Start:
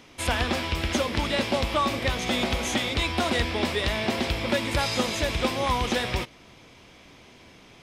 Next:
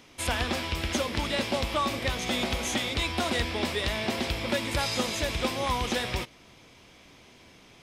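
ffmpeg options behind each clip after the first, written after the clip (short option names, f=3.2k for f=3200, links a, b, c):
-af "highshelf=f=5k:g=4.5,volume=-3.5dB"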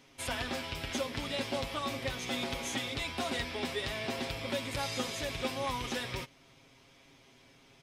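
-af "aecho=1:1:7.4:0.65,volume=-8dB"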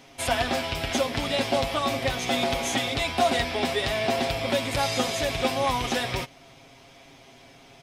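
-af "equalizer=f=710:w=5:g=9.5,volume=8.5dB"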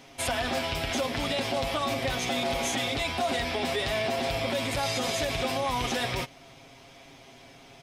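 -af "alimiter=limit=-19.5dB:level=0:latency=1:release=45"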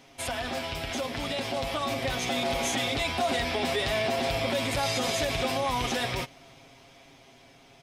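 -af "dynaudnorm=f=300:g=13:m=4.5dB,volume=-3.5dB"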